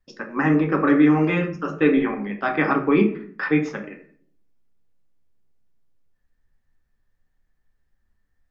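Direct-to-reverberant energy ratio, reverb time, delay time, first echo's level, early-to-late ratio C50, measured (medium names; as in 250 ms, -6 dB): 2.5 dB, 0.55 s, no echo, no echo, 10.0 dB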